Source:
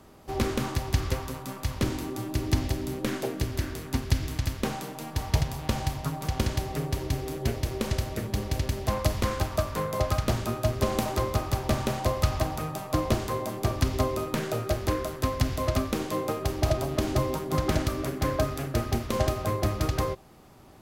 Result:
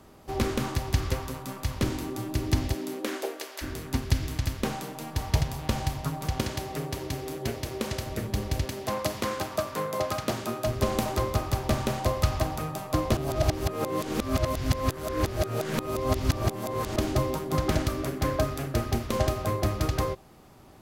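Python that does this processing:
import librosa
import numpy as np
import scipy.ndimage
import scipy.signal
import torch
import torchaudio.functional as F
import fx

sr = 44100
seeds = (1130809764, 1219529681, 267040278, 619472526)

y = fx.highpass(x, sr, hz=fx.line((2.73, 170.0), (3.61, 560.0)), slope=24, at=(2.73, 3.61), fade=0.02)
y = fx.highpass(y, sr, hz=170.0, slope=6, at=(6.4, 8.06))
y = fx.highpass(y, sr, hz=180.0, slope=12, at=(8.65, 10.67))
y = fx.edit(y, sr, fx.reverse_span(start_s=13.17, length_s=3.79), tone=tone)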